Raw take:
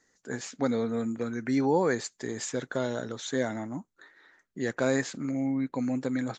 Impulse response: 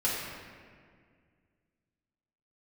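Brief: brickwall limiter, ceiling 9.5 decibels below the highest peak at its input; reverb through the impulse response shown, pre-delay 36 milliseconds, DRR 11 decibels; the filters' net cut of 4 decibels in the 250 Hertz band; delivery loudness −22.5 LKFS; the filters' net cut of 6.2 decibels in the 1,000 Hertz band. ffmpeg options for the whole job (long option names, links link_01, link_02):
-filter_complex "[0:a]equalizer=frequency=250:width_type=o:gain=-4,equalizer=frequency=1000:width_type=o:gain=-8,alimiter=level_in=2.5dB:limit=-24dB:level=0:latency=1,volume=-2.5dB,asplit=2[link_01][link_02];[1:a]atrim=start_sample=2205,adelay=36[link_03];[link_02][link_03]afir=irnorm=-1:irlink=0,volume=-20dB[link_04];[link_01][link_04]amix=inputs=2:normalize=0,volume=14dB"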